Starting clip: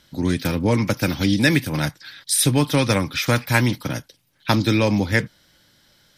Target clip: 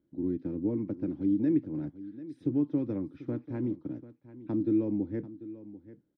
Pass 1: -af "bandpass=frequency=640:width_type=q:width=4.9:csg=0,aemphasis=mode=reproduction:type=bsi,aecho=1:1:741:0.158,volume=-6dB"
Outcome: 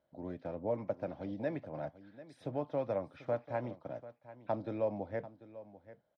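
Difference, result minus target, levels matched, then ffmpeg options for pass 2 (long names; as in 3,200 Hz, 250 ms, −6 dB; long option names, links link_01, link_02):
500 Hz band +9.0 dB
-af "bandpass=frequency=320:width_type=q:width=4.9:csg=0,aemphasis=mode=reproduction:type=bsi,aecho=1:1:741:0.158,volume=-6dB"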